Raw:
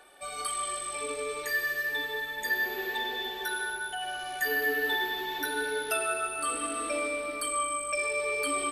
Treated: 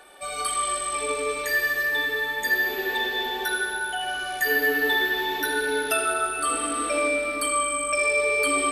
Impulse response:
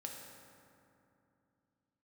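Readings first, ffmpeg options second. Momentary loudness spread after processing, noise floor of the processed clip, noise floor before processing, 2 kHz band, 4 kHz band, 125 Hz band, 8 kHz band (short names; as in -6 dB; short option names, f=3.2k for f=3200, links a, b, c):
5 LU, -32 dBFS, -39 dBFS, +7.0 dB, +6.0 dB, n/a, +6.0 dB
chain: -filter_complex "[0:a]asplit=2[a][b];[1:a]atrim=start_sample=2205,lowpass=5.2k,adelay=78[c];[b][c]afir=irnorm=-1:irlink=0,volume=-2.5dB[d];[a][d]amix=inputs=2:normalize=0,volume=5.5dB"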